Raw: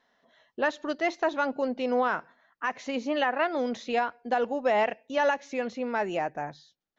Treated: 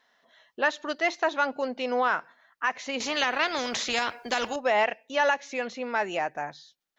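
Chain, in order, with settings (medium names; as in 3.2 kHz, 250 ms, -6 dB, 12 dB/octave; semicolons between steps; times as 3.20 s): tilt shelf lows -5.5 dB, about 640 Hz; 3.00–4.56 s: spectrum-flattening compressor 2:1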